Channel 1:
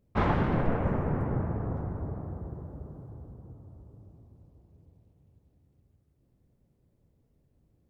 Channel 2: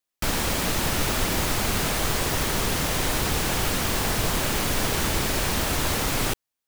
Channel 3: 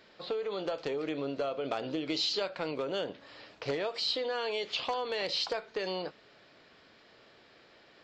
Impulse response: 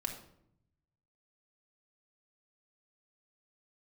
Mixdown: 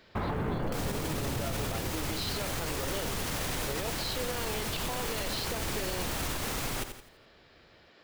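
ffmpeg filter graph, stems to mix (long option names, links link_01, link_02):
-filter_complex "[0:a]volume=1.5dB[link_01];[1:a]alimiter=limit=-18dB:level=0:latency=1,adelay=500,volume=-2.5dB,asplit=2[link_02][link_03];[link_03]volume=-10dB[link_04];[2:a]volume=0dB[link_05];[link_04]aecho=0:1:84|168|252|336|420:1|0.36|0.13|0.0467|0.0168[link_06];[link_01][link_02][link_05][link_06]amix=inputs=4:normalize=0,acrusher=bits=8:mode=log:mix=0:aa=0.000001,alimiter=limit=-23.5dB:level=0:latency=1:release=114"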